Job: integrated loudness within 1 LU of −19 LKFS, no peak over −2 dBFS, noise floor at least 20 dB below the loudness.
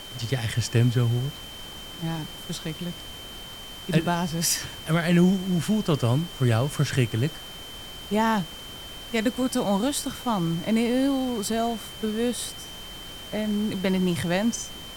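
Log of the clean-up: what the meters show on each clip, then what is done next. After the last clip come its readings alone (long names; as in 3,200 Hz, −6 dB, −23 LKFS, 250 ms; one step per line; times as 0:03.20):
interfering tone 3,100 Hz; level of the tone −40 dBFS; background noise floor −40 dBFS; target noise floor −46 dBFS; integrated loudness −25.5 LKFS; sample peak −8.0 dBFS; target loudness −19.0 LKFS
→ notch filter 3,100 Hz, Q 30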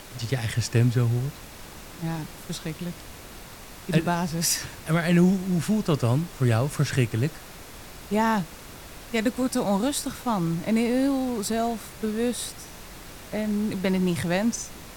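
interfering tone none found; background noise floor −43 dBFS; target noise floor −46 dBFS
→ noise reduction from a noise print 6 dB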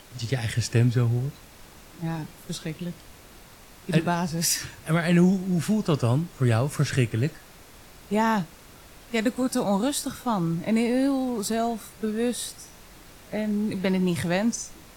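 background noise floor −49 dBFS; integrated loudness −26.0 LKFS; sample peak −8.0 dBFS; target loudness −19.0 LKFS
→ level +7 dB
brickwall limiter −2 dBFS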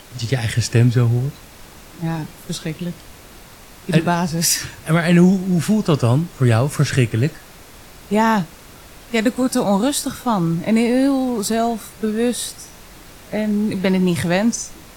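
integrated loudness −19.0 LKFS; sample peak −2.0 dBFS; background noise floor −42 dBFS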